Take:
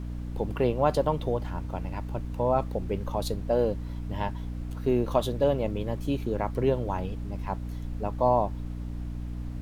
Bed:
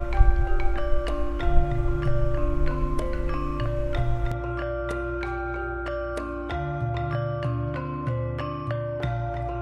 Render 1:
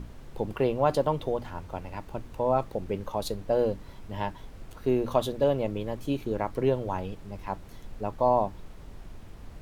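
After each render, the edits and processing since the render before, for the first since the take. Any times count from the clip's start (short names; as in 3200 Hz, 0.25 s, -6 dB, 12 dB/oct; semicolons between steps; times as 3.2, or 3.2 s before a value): notches 60/120/180/240/300 Hz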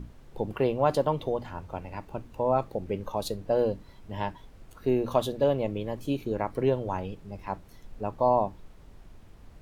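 noise print and reduce 6 dB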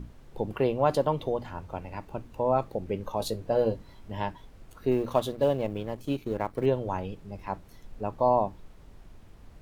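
3.18–4.12 doubler 18 ms -7 dB; 4.91–6.66 G.711 law mismatch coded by A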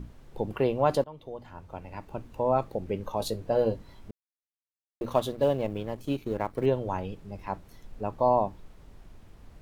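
1.04–2.26 fade in, from -22 dB; 4.11–5.01 mute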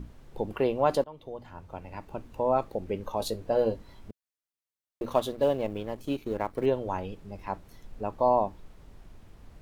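dynamic EQ 130 Hz, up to -6 dB, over -47 dBFS, Q 1.7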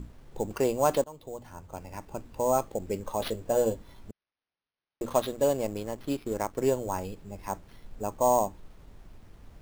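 sample-rate reducer 7500 Hz, jitter 0%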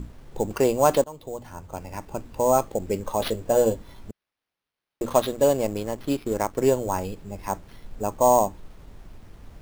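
gain +5.5 dB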